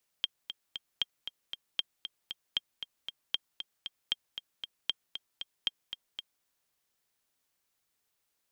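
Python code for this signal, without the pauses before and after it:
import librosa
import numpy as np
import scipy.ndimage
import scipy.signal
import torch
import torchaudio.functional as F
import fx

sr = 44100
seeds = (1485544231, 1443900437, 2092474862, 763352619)

y = fx.click_track(sr, bpm=232, beats=3, bars=8, hz=3200.0, accent_db=9.5, level_db=-15.0)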